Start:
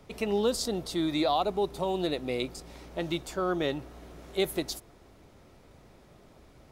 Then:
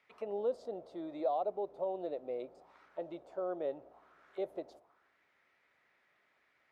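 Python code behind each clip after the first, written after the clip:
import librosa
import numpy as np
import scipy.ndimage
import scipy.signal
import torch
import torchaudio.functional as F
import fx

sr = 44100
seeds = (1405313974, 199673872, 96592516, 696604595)

y = fx.auto_wah(x, sr, base_hz=580.0, top_hz=2200.0, q=3.1, full_db=-32.5, direction='down')
y = y * 10.0 ** (-2.0 / 20.0)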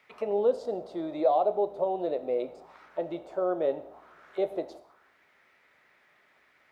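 y = fx.rev_gated(x, sr, seeds[0], gate_ms=230, shape='falling', drr_db=10.5)
y = y * 10.0 ** (9.0 / 20.0)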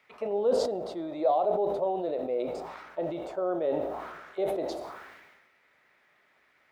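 y = fx.sustainer(x, sr, db_per_s=40.0)
y = y * 10.0 ** (-2.0 / 20.0)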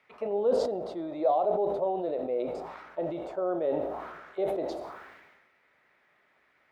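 y = fx.high_shelf(x, sr, hz=3600.0, db=-7.5)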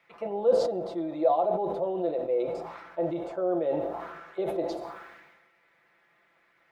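y = x + 0.65 * np.pad(x, (int(5.9 * sr / 1000.0), 0))[:len(x)]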